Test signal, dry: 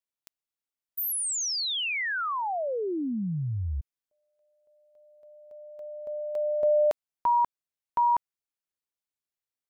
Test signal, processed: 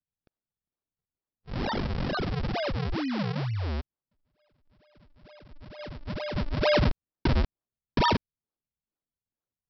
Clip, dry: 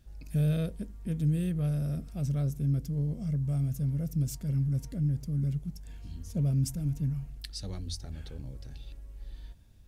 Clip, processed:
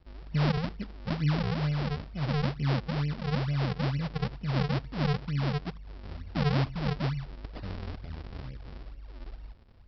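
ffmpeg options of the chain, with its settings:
-af "acontrast=32,aresample=11025,acrusher=samples=21:mix=1:aa=0.000001:lfo=1:lforange=33.6:lforate=2.2,aresample=44100,volume=-5dB"

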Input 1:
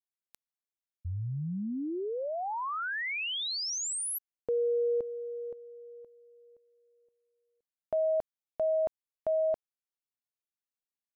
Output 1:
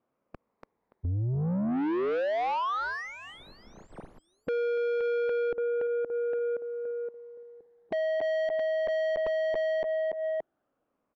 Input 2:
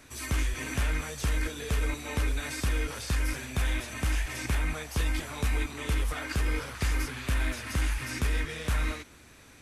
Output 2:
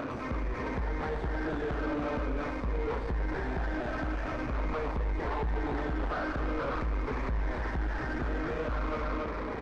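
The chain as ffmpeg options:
-filter_complex "[0:a]afftfilt=real='re*pow(10,7/40*sin(2*PI*(0.89*log(max(b,1)*sr/1024/100)/log(2)-(-0.46)*(pts-256)/sr)))':imag='im*pow(10,7/40*sin(2*PI*(0.89*log(max(b,1)*sr/1024/100)/log(2)-(-0.46)*(pts-256)/sr)))':win_size=1024:overlap=0.75,asplit=2[a][b];[b]adelay=287,lowpass=f=3k:p=1,volume=-11dB,asplit=2[c][d];[d]adelay=287,lowpass=f=3k:p=1,volume=0.3,asplit=2[e][f];[f]adelay=287,lowpass=f=3k:p=1,volume=0.3[g];[a][c][e][g]amix=inputs=4:normalize=0,asplit=2[h][i];[i]highpass=f=720:p=1,volume=33dB,asoftclip=type=tanh:threshold=-15.5dB[j];[h][j]amix=inputs=2:normalize=0,lowpass=f=2.3k:p=1,volume=-6dB,equalizer=f=2.7k:w=3.3:g=-3,acompressor=threshold=-37dB:ratio=8:attack=0.45:release=267:knee=1:detection=peak,asubboost=boost=3:cutoff=53,adynamicsmooth=sensitivity=3:basefreq=510,aeval=exprs='0.0251*sin(PI/2*1.58*val(0)/0.0251)':c=same,volume=5.5dB"

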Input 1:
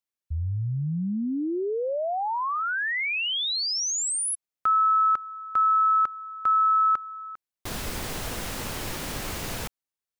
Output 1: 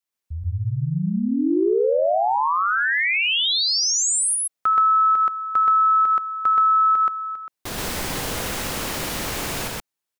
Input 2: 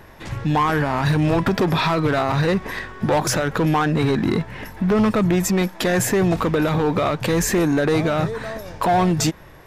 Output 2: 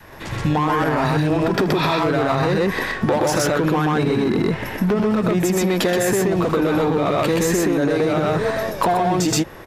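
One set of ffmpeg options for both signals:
-af "lowshelf=f=110:g=-6.5,aecho=1:1:78.72|125.4:0.251|1,adynamicequalizer=threshold=0.0501:dfrequency=400:dqfactor=0.96:tfrequency=400:tqfactor=0.96:attack=5:release=100:ratio=0.417:range=2:mode=boostabove:tftype=bell,alimiter=limit=-11.5dB:level=0:latency=1:release=135,acompressor=threshold=-20dB:ratio=4:attack=22:release=179:knee=1:detection=peak,volume=3.5dB"

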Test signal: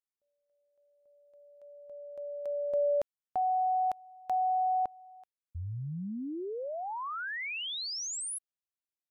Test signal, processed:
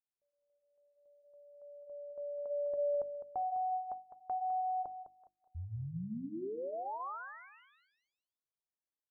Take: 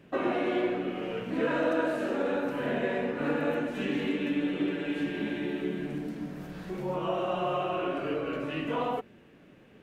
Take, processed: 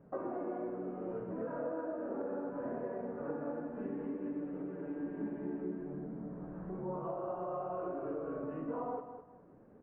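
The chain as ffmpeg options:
-af "lowpass=f=1.2k:w=0.5412,lowpass=f=1.2k:w=1.3066,acompressor=threshold=-30dB:ratio=6:attack=4.6:release=952:knee=6:detection=rms,flanger=delay=1.4:depth=3.3:regen=-68:speed=0.65:shape=sinusoidal,bandreject=f=50:t=h:w=6,bandreject=f=100:t=h:w=6,bandreject=f=150:t=h:w=6,bandreject=f=200:t=h:w=6,bandreject=f=250:t=h:w=6,bandreject=f=300:t=h:w=6,bandreject=f=350:t=h:w=6,aecho=1:1:206|412|618:0.316|0.0917|0.0266,volume=1.5dB"

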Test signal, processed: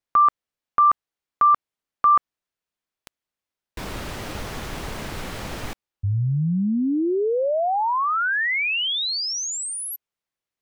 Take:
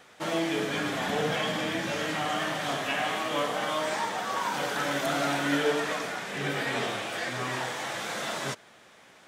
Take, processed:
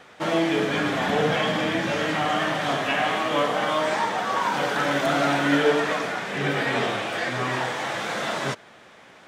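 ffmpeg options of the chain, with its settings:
-af "highshelf=f=5.6k:g=-11,volume=6.5dB"

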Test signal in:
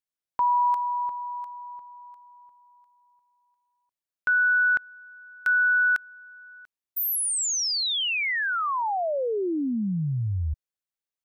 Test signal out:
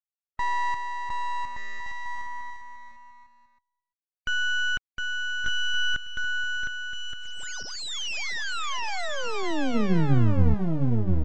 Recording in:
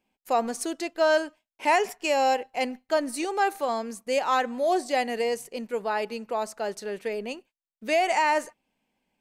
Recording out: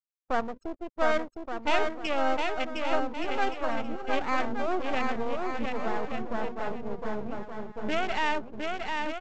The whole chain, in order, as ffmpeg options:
-filter_complex "[0:a]highpass=81,bandreject=f=50:t=h:w=6,bandreject=f=100:t=h:w=6,bandreject=f=150:t=h:w=6,bandreject=f=200:t=h:w=6,bandreject=f=250:t=h:w=6,afwtdn=0.0282,afftfilt=real='re*gte(hypot(re,im),0.01)':imag='im*gte(hypot(re,im),0.01)':win_size=1024:overlap=0.75,asubboost=boost=5.5:cutoff=200,acrossover=split=3800[a][b];[b]acompressor=threshold=-36dB:ratio=4:attack=1:release=60[c];[a][c]amix=inputs=2:normalize=0,aresample=16000,aeval=exprs='max(val(0),0)':c=same,aresample=44100,aecho=1:1:710|1172|1471|1666|1793:0.631|0.398|0.251|0.158|0.1"

